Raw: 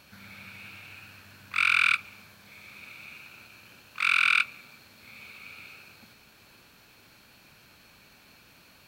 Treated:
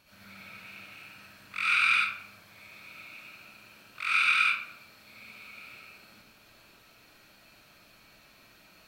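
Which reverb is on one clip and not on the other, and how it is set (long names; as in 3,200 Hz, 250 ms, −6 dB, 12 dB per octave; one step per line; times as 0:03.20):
comb and all-pass reverb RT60 0.62 s, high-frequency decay 0.65×, pre-delay 35 ms, DRR −7.5 dB
level −9 dB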